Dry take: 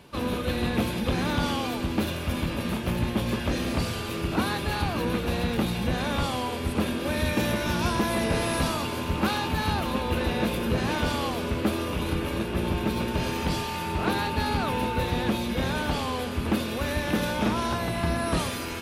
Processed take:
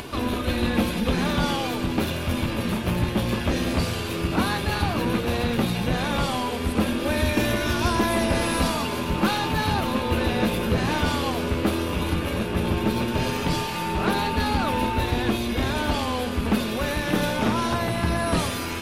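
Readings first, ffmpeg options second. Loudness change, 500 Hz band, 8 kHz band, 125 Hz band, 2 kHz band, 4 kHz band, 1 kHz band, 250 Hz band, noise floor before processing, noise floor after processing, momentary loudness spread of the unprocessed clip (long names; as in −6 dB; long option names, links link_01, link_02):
+3.0 dB, +3.0 dB, +3.0 dB, +3.0 dB, +3.0 dB, +3.0 dB, +3.0 dB, +3.0 dB, −32 dBFS, −29 dBFS, 3 LU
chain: -af "flanger=delay=2.8:depth=8.6:regen=-47:speed=0.13:shape=sinusoidal,acompressor=mode=upward:threshold=-33dB:ratio=2.5,aeval=exprs='0.15*(cos(1*acos(clip(val(0)/0.15,-1,1)))-cos(1*PI/2))+0.00376*(cos(8*acos(clip(val(0)/0.15,-1,1)))-cos(8*PI/2))':channel_layout=same,volume=7dB"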